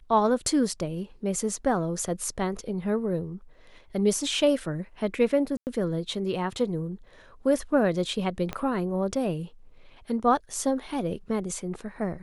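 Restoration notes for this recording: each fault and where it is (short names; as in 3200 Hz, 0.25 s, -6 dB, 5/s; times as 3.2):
5.57–5.67 gap 99 ms
8.53 pop -17 dBFS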